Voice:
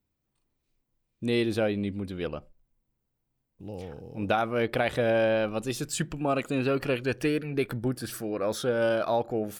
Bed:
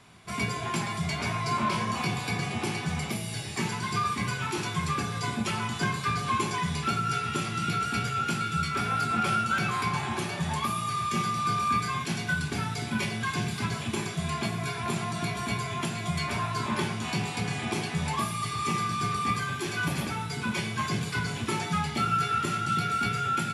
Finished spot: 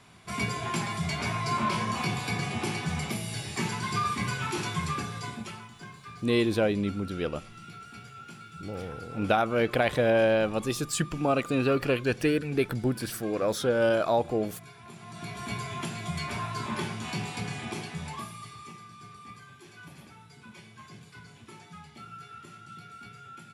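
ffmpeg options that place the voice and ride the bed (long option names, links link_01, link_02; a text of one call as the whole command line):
ffmpeg -i stem1.wav -i stem2.wav -filter_complex "[0:a]adelay=5000,volume=1.5dB[link_01];[1:a]volume=13dB,afade=type=out:start_time=4.7:duration=0.99:silence=0.149624,afade=type=in:start_time=14.98:duration=0.6:silence=0.211349,afade=type=out:start_time=17.39:duration=1.38:silence=0.16788[link_02];[link_01][link_02]amix=inputs=2:normalize=0" out.wav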